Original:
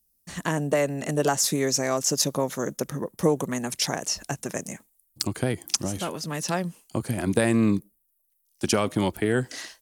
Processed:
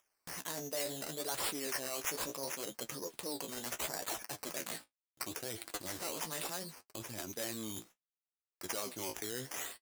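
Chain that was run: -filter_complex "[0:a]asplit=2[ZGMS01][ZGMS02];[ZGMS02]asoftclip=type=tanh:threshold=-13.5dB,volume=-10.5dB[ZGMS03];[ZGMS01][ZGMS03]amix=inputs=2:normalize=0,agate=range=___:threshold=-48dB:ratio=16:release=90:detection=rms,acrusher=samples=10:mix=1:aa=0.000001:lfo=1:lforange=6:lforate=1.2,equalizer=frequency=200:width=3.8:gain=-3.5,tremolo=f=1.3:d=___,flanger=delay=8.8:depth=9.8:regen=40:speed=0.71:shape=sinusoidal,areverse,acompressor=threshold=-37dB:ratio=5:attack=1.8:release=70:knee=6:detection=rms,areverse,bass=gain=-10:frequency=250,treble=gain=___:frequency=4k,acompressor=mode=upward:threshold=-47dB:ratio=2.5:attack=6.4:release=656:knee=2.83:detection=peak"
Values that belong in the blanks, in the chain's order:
-51dB, 0.44, 13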